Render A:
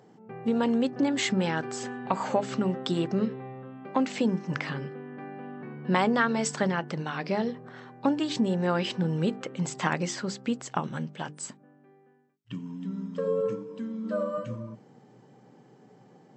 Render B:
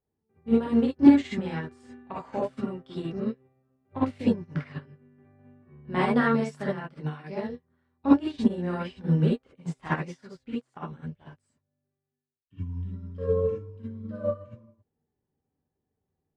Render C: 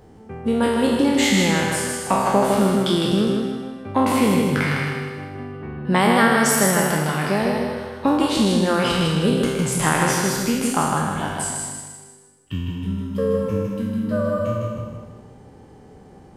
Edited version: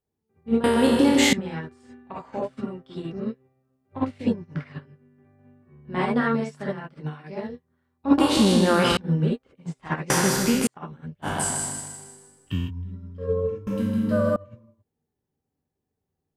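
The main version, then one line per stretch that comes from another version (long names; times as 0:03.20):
B
0:00.64–0:01.33: punch in from C
0:08.18–0:08.97: punch in from C
0:10.10–0:10.67: punch in from C
0:11.25–0:12.68: punch in from C, crossfade 0.06 s
0:13.67–0:14.36: punch in from C
not used: A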